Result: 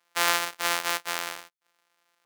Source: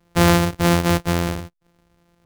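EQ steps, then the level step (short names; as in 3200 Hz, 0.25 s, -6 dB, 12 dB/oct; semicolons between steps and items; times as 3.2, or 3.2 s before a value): HPF 1100 Hz 12 dB/oct; -2.0 dB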